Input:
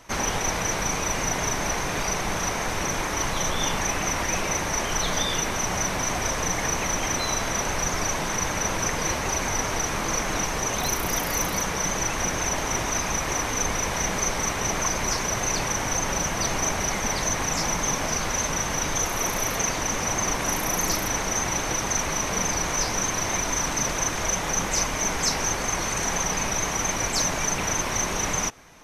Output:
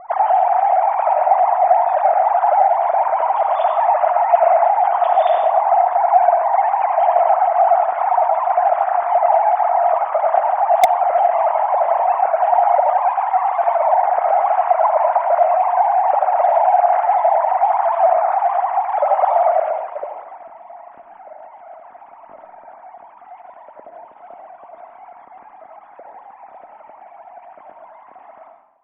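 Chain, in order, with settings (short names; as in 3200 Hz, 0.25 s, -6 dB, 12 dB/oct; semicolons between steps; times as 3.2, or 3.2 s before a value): sine-wave speech; reverb RT60 0.80 s, pre-delay 40 ms, DRR 4 dB; low-pass sweep 720 Hz -> 260 Hz, 19.44–20.52; in parallel at -9 dB: wrapped overs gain 7 dB; on the sum: gain +3 dB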